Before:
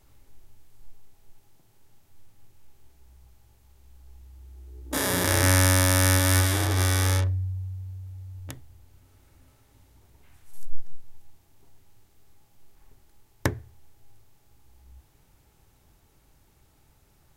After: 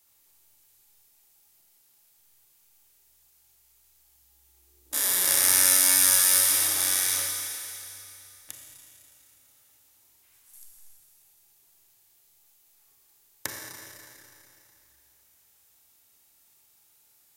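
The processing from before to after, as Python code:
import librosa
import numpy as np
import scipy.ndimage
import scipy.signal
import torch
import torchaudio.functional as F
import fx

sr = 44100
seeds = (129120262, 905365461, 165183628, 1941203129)

y = fx.tilt_eq(x, sr, slope=4.5)
y = fx.rev_schroeder(y, sr, rt60_s=2.9, comb_ms=28, drr_db=-0.5)
y = F.gain(torch.from_numpy(y), -10.5).numpy()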